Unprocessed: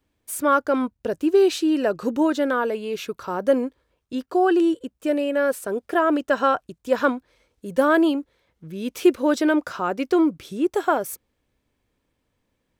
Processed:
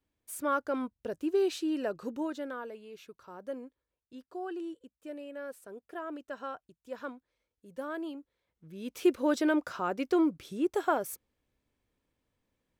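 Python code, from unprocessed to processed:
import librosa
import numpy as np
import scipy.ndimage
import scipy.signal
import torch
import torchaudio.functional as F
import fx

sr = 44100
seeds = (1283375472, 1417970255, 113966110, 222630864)

y = fx.gain(x, sr, db=fx.line((1.83, -11.0), (2.91, -20.0), (8.02, -20.0), (9.19, -7.5)))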